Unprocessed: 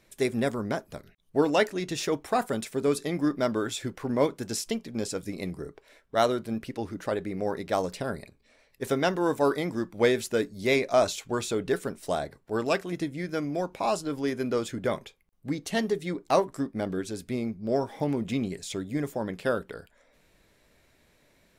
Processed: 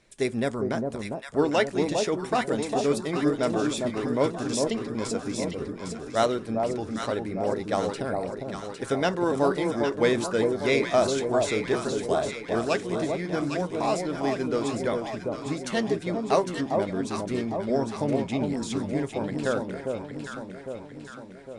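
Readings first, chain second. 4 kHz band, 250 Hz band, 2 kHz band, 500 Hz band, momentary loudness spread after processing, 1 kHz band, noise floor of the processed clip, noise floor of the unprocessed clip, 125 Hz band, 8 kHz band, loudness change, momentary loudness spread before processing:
+1.5 dB, +2.5 dB, +1.5 dB, +2.5 dB, 9 LU, +2.0 dB, −42 dBFS, −65 dBFS, +2.5 dB, +1.5 dB, +2.0 dB, 9 LU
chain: delay that swaps between a low-pass and a high-pass 403 ms, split 950 Hz, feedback 73%, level −3 dB
Ogg Vorbis 64 kbit/s 22,050 Hz

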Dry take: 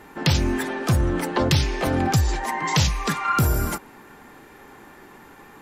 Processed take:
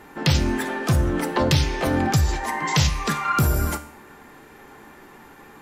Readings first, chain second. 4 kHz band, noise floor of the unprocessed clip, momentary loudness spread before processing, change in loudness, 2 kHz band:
+0.5 dB, −47 dBFS, 5 LU, +0.5 dB, +0.5 dB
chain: tuned comb filter 74 Hz, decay 0.55 s, harmonics all, mix 60%
level +6 dB

